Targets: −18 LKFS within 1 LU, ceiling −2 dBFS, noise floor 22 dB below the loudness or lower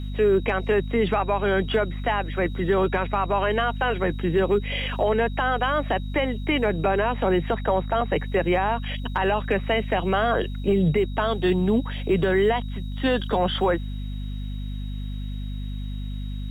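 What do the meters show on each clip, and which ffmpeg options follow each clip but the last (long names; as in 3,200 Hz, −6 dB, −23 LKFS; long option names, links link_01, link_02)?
mains hum 50 Hz; hum harmonics up to 250 Hz; level of the hum −28 dBFS; interfering tone 3,800 Hz; level of the tone −48 dBFS; integrated loudness −24.0 LKFS; sample peak −11.0 dBFS; target loudness −18.0 LKFS
→ -af "bandreject=frequency=50:width_type=h:width=6,bandreject=frequency=100:width_type=h:width=6,bandreject=frequency=150:width_type=h:width=6,bandreject=frequency=200:width_type=h:width=6,bandreject=frequency=250:width_type=h:width=6"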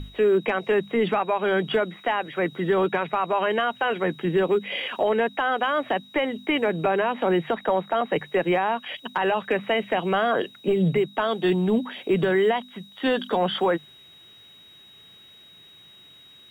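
mains hum none found; interfering tone 3,800 Hz; level of the tone −48 dBFS
→ -af "bandreject=frequency=3800:width=30"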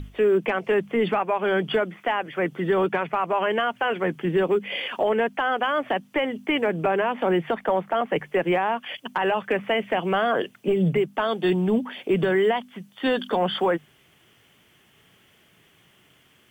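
interfering tone none found; integrated loudness −24.0 LKFS; sample peak −12.5 dBFS; target loudness −18.0 LKFS
→ -af "volume=6dB"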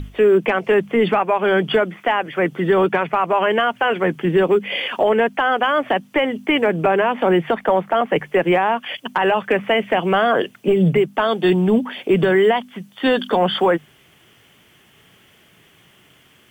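integrated loudness −18.0 LKFS; sample peak −6.5 dBFS; background noise floor −53 dBFS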